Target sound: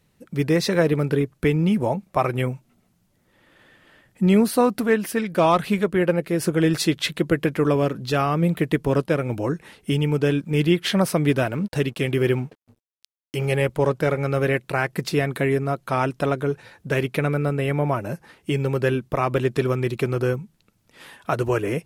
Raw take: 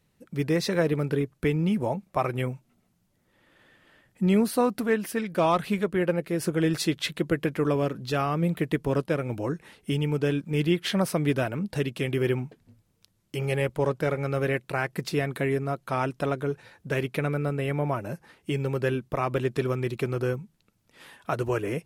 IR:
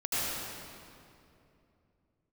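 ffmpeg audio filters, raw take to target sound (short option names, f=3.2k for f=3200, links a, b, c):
-filter_complex "[0:a]asettb=1/sr,asplit=3[a][b][c];[a]atrim=end=11.334[d];[b]atrim=start=11.33:end=13.5,asetpts=PTS-STARTPTS,afade=t=in:d=0.004:c=qsin,afade=t=out:st=2.166:d=0.004:c=qsin,aeval=exprs='sgn(val(0))*max(abs(val(0))-0.0015,0)':c=same[e];[c]atrim=start=13.496[f];[d][e]acrossfade=d=0.004:c1=hsin:c2=qsin[g];[g][f]acrossfade=d=0.004:c1=qsin:c2=hsin,volume=5dB"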